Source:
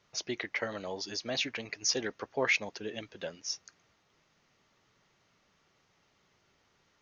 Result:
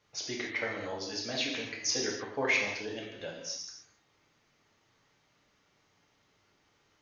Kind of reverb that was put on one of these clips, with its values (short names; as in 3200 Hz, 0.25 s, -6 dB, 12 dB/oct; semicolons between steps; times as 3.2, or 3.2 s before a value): non-linear reverb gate 0.32 s falling, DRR -2 dB; gain -3.5 dB